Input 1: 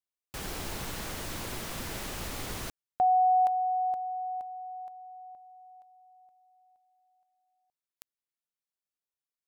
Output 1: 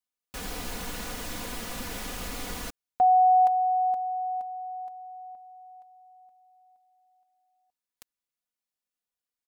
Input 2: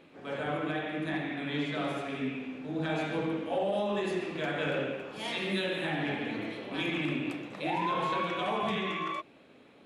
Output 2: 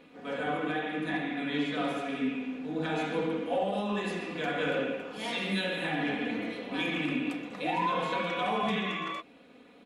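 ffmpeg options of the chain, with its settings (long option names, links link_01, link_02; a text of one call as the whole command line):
ffmpeg -i in.wav -af "aecho=1:1:4.1:0.62" out.wav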